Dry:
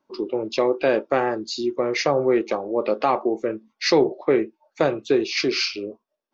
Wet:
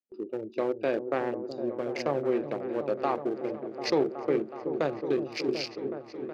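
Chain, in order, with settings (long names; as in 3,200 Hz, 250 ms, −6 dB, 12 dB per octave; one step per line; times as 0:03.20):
adaptive Wiener filter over 41 samples
high-pass filter 68 Hz
echo whose low-pass opens from repeat to repeat 371 ms, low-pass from 400 Hz, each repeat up 1 octave, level −6 dB
noise gate with hold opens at −35 dBFS
level −7.5 dB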